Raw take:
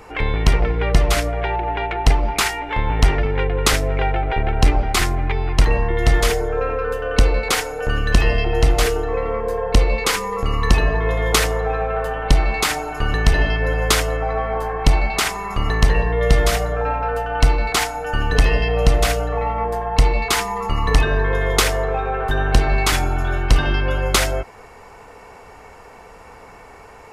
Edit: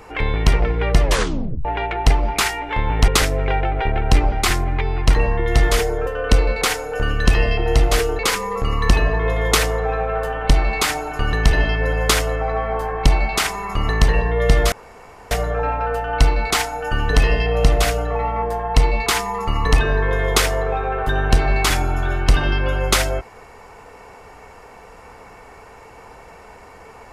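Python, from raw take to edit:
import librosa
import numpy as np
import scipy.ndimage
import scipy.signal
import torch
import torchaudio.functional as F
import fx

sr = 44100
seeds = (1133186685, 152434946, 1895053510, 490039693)

y = fx.edit(x, sr, fx.tape_stop(start_s=1.03, length_s=0.62),
    fx.cut(start_s=3.08, length_s=0.51),
    fx.cut(start_s=6.58, length_s=0.36),
    fx.cut(start_s=9.06, length_s=0.94),
    fx.insert_room_tone(at_s=16.53, length_s=0.59), tone=tone)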